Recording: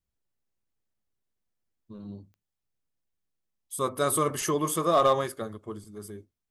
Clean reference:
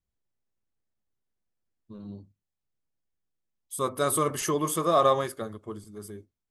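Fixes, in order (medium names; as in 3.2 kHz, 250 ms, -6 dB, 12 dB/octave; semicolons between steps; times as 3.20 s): clip repair -14 dBFS; de-click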